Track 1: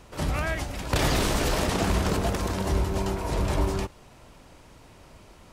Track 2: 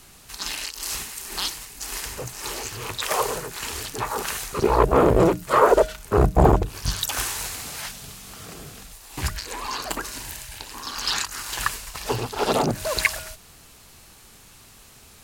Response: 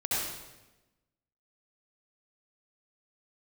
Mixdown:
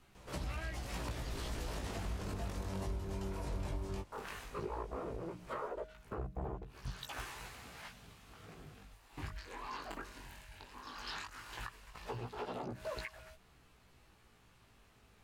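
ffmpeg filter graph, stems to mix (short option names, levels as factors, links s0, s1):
-filter_complex "[0:a]acrossover=split=120[s0][s1];[s1]acompressor=threshold=0.0251:ratio=2.5[s2];[s0][s2]amix=inputs=2:normalize=0,adelay=150,volume=0.631[s3];[1:a]bass=f=250:g=1,treble=f=4000:g=-14,acompressor=threshold=0.0631:ratio=6,volume=0.316,asplit=3[s4][s5][s6];[s4]atrim=end=2.48,asetpts=PTS-STARTPTS,afade=t=out:st=2.476:d=0.004:c=hsin[s7];[s5]atrim=start=2.48:end=4.12,asetpts=PTS-STARTPTS,volume=0[s8];[s6]atrim=start=4.12,asetpts=PTS-STARTPTS,afade=t=in:d=0.004:c=hsin[s9];[s7][s8][s9]concat=n=3:v=0:a=1[s10];[s3][s10]amix=inputs=2:normalize=0,flanger=delay=15.5:depth=5.6:speed=0.15,alimiter=level_in=2.11:limit=0.0631:level=0:latency=1:release=420,volume=0.473"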